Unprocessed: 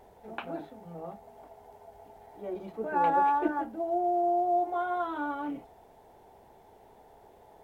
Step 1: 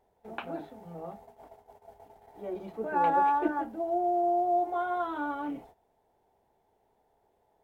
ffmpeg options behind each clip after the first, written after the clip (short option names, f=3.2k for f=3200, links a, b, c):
-af "agate=range=-15dB:threshold=-51dB:ratio=16:detection=peak"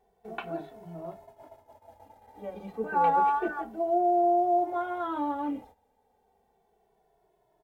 -filter_complex "[0:a]asplit=2[a][b];[b]adelay=2.2,afreqshift=-0.3[c];[a][c]amix=inputs=2:normalize=1,volume=4dB"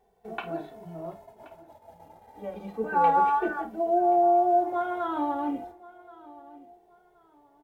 -filter_complex "[0:a]asplit=2[a][b];[b]adelay=50,volume=-12.5dB[c];[a][c]amix=inputs=2:normalize=0,aecho=1:1:1076|2152:0.0944|0.0264,volume=2dB"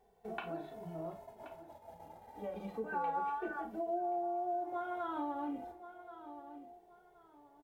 -filter_complex "[0:a]acompressor=threshold=-37dB:ratio=2.5,asplit=2[a][b];[b]adelay=38,volume=-12dB[c];[a][c]amix=inputs=2:normalize=0,volume=-2.5dB"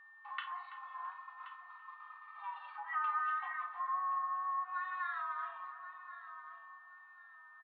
-filter_complex "[0:a]asplit=2[a][b];[b]adelay=332,lowpass=f=1.5k:p=1,volume=-11.5dB,asplit=2[c][d];[d]adelay=332,lowpass=f=1.5k:p=1,volume=0.52,asplit=2[e][f];[f]adelay=332,lowpass=f=1.5k:p=1,volume=0.52,asplit=2[g][h];[h]adelay=332,lowpass=f=1.5k:p=1,volume=0.52,asplit=2[i][j];[j]adelay=332,lowpass=f=1.5k:p=1,volume=0.52,asplit=2[k][l];[l]adelay=332,lowpass=f=1.5k:p=1,volume=0.52[m];[a][c][e][g][i][k][m]amix=inputs=7:normalize=0,highpass=f=540:t=q:w=0.5412,highpass=f=540:t=q:w=1.307,lowpass=f=3.4k:t=q:w=0.5176,lowpass=f=3.4k:t=q:w=0.7071,lowpass=f=3.4k:t=q:w=1.932,afreqshift=390,aeval=exprs='val(0)+0.00141*sin(2*PI*1800*n/s)':c=same,volume=1dB"